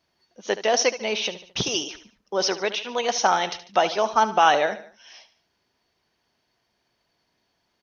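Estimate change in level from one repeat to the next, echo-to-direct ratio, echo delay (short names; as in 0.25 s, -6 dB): -6.5 dB, -13.0 dB, 73 ms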